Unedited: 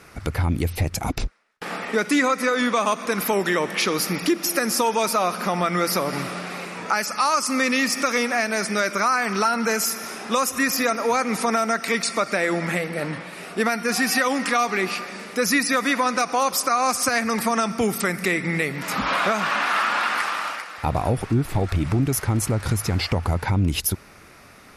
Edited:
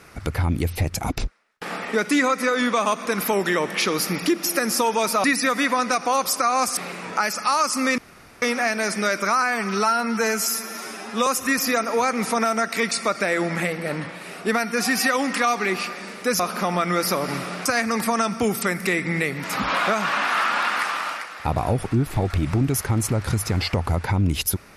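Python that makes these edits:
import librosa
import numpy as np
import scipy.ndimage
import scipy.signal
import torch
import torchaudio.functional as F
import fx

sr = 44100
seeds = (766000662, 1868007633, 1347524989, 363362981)

y = fx.edit(x, sr, fx.swap(start_s=5.24, length_s=1.26, other_s=15.51, other_length_s=1.53),
    fx.room_tone_fill(start_s=7.71, length_s=0.44),
    fx.stretch_span(start_s=9.15, length_s=1.23, factor=1.5), tone=tone)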